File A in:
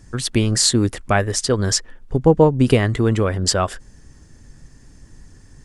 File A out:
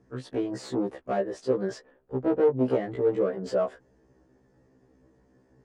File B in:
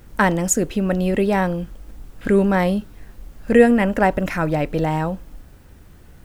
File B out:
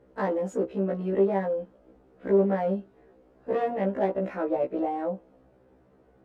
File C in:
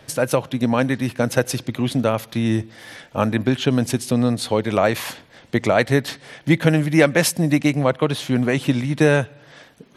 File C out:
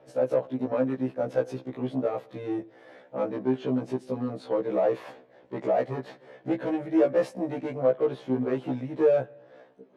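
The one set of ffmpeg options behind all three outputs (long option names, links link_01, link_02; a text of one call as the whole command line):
ffmpeg -i in.wav -af "volume=14.5dB,asoftclip=hard,volume=-14.5dB,bandpass=frequency=490:width_type=q:width=1.5:csg=0,afftfilt=real='re*1.73*eq(mod(b,3),0)':imag='im*1.73*eq(mod(b,3),0)':win_size=2048:overlap=0.75,volume=1dB" out.wav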